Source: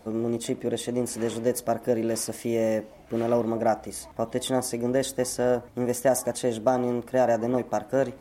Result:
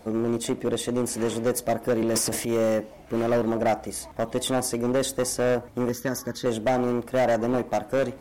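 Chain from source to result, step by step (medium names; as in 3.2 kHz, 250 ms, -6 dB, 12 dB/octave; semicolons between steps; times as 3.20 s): 2.01–2.52 s: transient shaper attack -5 dB, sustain +9 dB; 5.89–6.46 s: static phaser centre 2.6 kHz, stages 6; hard clipper -21 dBFS, distortion -11 dB; trim +3 dB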